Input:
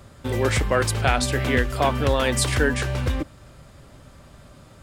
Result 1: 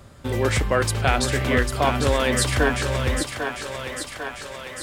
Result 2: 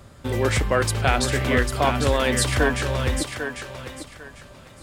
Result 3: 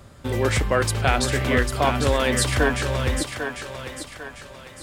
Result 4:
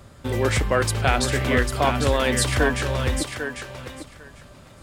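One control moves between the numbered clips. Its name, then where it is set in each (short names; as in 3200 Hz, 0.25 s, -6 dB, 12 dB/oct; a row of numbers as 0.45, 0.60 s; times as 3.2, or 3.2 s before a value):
thinning echo, feedback: 69, 26, 44, 16%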